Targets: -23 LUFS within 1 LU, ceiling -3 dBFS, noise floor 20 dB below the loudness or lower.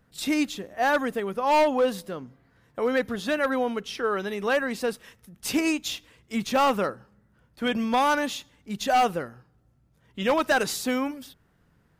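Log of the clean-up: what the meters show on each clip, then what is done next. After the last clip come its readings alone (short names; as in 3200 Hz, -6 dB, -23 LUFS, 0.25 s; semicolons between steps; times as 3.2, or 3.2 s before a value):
clipped 1.6%; flat tops at -16.5 dBFS; loudness -26.0 LUFS; peak -16.5 dBFS; loudness target -23.0 LUFS
-> clip repair -16.5 dBFS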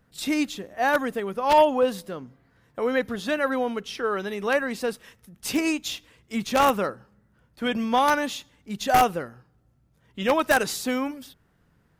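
clipped 0.0%; loudness -24.5 LUFS; peak -7.5 dBFS; loudness target -23.0 LUFS
-> gain +1.5 dB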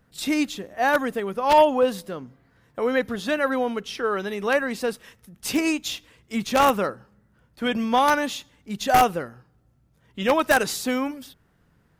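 loudness -23.0 LUFS; peak -6.0 dBFS; noise floor -63 dBFS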